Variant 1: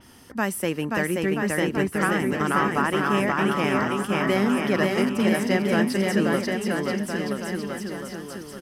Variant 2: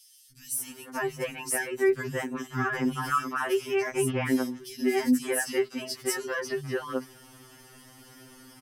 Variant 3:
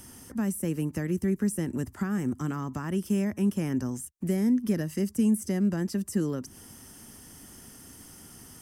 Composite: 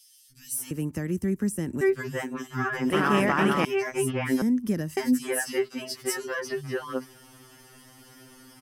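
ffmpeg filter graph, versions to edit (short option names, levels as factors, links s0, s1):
-filter_complex "[2:a]asplit=2[s0][s1];[1:a]asplit=4[s2][s3][s4][s5];[s2]atrim=end=0.712[s6];[s0]atrim=start=0.708:end=1.812[s7];[s3]atrim=start=1.808:end=2.902[s8];[0:a]atrim=start=2.898:end=3.652[s9];[s4]atrim=start=3.648:end=4.422[s10];[s1]atrim=start=4.418:end=4.972[s11];[s5]atrim=start=4.968[s12];[s6][s7]acrossfade=d=0.004:c1=hsin:c2=hsin[s13];[s13][s8]acrossfade=d=0.004:c1=hsin:c2=hsin[s14];[s14][s9]acrossfade=d=0.004:c1=hsin:c2=hsin[s15];[s15][s10]acrossfade=d=0.004:c1=hsin:c2=hsin[s16];[s16][s11]acrossfade=d=0.004:c1=hsin:c2=hsin[s17];[s17][s12]acrossfade=d=0.004:c1=hsin:c2=hsin"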